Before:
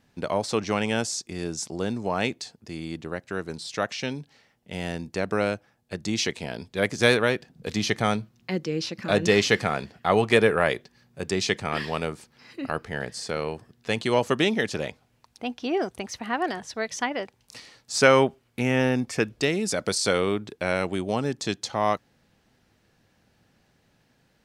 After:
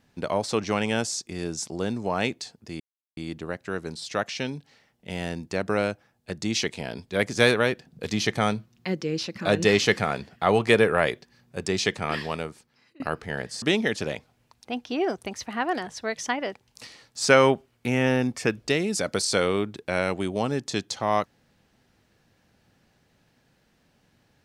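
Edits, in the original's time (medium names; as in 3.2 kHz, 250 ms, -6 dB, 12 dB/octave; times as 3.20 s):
2.80 s: insert silence 0.37 s
11.78–12.63 s: fade out, to -23.5 dB
13.25–14.35 s: delete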